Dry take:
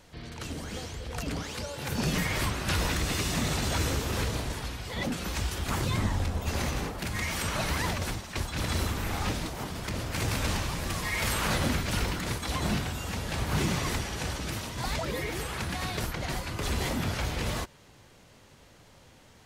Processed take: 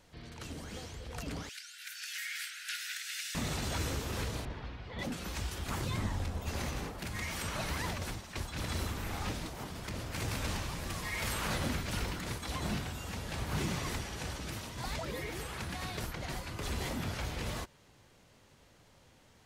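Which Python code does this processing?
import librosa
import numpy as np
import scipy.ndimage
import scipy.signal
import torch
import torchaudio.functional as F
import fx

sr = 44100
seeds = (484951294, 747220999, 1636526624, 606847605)

y = fx.steep_highpass(x, sr, hz=1400.0, slope=96, at=(1.49, 3.35))
y = fx.air_absorb(y, sr, metres=260.0, at=(4.45, 4.99))
y = y * librosa.db_to_amplitude(-6.5)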